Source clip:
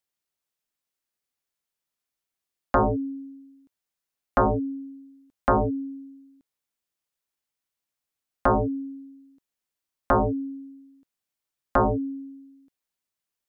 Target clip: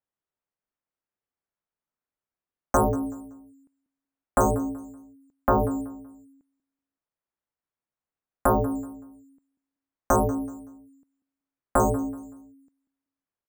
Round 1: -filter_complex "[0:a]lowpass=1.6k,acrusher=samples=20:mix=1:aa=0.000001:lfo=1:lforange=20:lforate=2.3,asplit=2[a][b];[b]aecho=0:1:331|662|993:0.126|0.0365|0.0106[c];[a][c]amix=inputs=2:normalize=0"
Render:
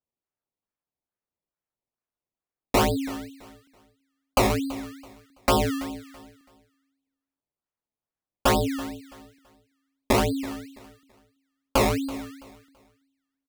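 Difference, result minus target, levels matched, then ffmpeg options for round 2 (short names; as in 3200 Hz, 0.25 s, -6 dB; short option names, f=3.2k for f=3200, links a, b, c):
echo 0.142 s late; decimation with a swept rate: distortion +16 dB
-filter_complex "[0:a]lowpass=1.6k,acrusher=samples=4:mix=1:aa=0.000001:lfo=1:lforange=4:lforate=2.3,asplit=2[a][b];[b]aecho=0:1:189|378|567:0.126|0.0365|0.0106[c];[a][c]amix=inputs=2:normalize=0"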